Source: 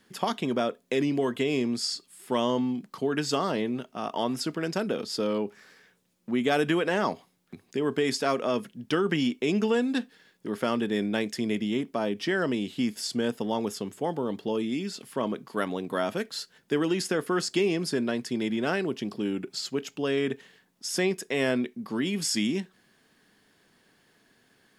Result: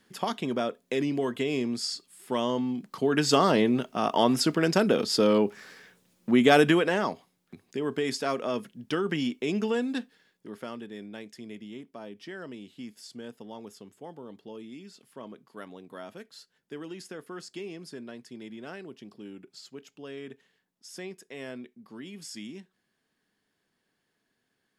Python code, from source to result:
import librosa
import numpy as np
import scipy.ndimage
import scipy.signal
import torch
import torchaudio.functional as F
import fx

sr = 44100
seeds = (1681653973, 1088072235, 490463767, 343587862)

y = fx.gain(x, sr, db=fx.line((2.65, -2.0), (3.4, 6.0), (6.58, 6.0), (7.12, -3.0), (9.89, -3.0), (10.92, -14.0)))